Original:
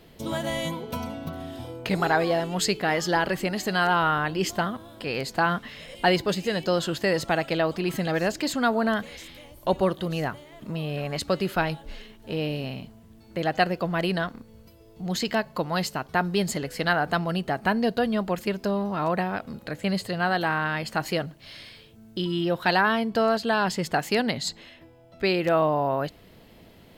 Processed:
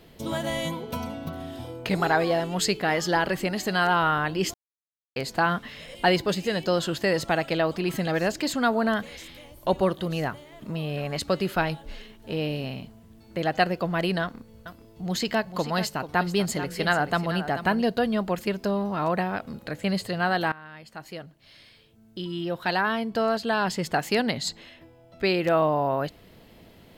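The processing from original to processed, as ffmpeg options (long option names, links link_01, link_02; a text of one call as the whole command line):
ffmpeg -i in.wav -filter_complex "[0:a]asettb=1/sr,asplit=3[link_01][link_02][link_03];[link_01]atrim=end=14.224[link_04];[link_02]atrim=start=14.22:end=17.82,asetpts=PTS-STARTPTS,afade=type=in:duration=0.004:curve=qsin,afade=type=out:start_time=3.596:duration=0.004:curve=qsin,aecho=1:1:437:0.266,atrim=end_sample=158760[link_05];[link_03]atrim=start=17.816[link_06];[link_04][link_05]acrossfade=duration=0.004:curve1=hsin:curve2=qsin[link_07];[link_07][link_06]acrossfade=duration=0.004:curve1=qsin:curve2=hsin,asplit=4[link_08][link_09][link_10][link_11];[link_08]atrim=end=4.54,asetpts=PTS-STARTPTS,afade=type=out:start_time=4.536:duration=0.004:curve=hsin[link_12];[link_09]atrim=start=4.54:end=5.16,asetpts=PTS-STARTPTS,volume=0[link_13];[link_10]atrim=start=5.16:end=20.52,asetpts=PTS-STARTPTS,afade=type=in:duration=0.004:curve=hsin,afade=type=out:start_time=15.356:duration=0.004:curve=hsin:silence=0.1[link_14];[link_11]atrim=start=20.52,asetpts=PTS-STARTPTS,afade=type=in:duration=3.57:silence=0.1[link_15];[link_12][link_13][link_14][link_15]concat=n=4:v=0:a=1" out.wav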